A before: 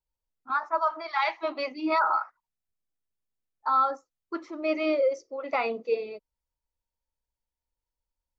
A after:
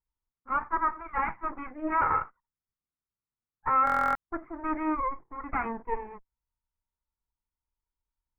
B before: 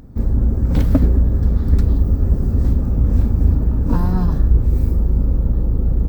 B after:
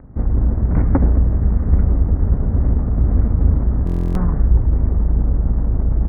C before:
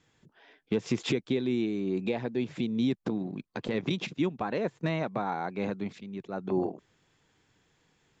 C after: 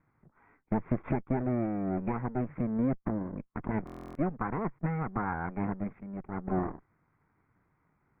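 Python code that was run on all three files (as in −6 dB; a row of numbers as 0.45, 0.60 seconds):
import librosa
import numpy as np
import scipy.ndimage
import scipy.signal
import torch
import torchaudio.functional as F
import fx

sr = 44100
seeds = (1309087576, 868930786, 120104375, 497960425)

y = fx.lower_of_two(x, sr, delay_ms=0.86)
y = scipy.signal.sosfilt(scipy.signal.butter(8, 2000.0, 'lowpass', fs=sr, output='sos'), y)
y = fx.buffer_glitch(y, sr, at_s=(3.85,), block=1024, repeats=12)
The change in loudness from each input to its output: −2.0, −0.5, −2.0 LU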